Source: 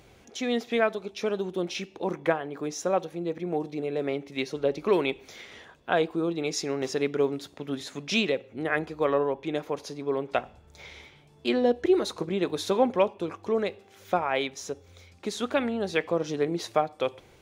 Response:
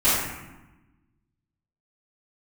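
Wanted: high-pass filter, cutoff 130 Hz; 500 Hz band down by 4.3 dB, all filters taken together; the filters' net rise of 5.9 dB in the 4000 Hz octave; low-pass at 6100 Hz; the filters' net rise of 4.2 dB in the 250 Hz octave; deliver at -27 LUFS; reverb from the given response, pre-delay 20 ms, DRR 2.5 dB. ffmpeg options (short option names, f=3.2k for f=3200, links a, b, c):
-filter_complex "[0:a]highpass=130,lowpass=6.1k,equalizer=f=250:t=o:g=8.5,equalizer=f=500:t=o:g=-8.5,equalizer=f=4k:t=o:g=8,asplit=2[a][b];[1:a]atrim=start_sample=2205,adelay=20[c];[b][c]afir=irnorm=-1:irlink=0,volume=-20.5dB[d];[a][d]amix=inputs=2:normalize=0,volume=-0.5dB"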